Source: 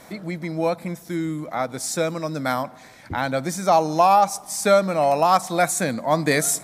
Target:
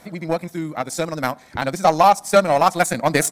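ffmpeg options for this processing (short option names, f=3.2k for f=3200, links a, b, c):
-af "atempo=2,aeval=exprs='0.531*(cos(1*acos(clip(val(0)/0.531,-1,1)))-cos(1*PI/2))+0.0335*(cos(7*acos(clip(val(0)/0.531,-1,1)))-cos(7*PI/2))':c=same,volume=4dB"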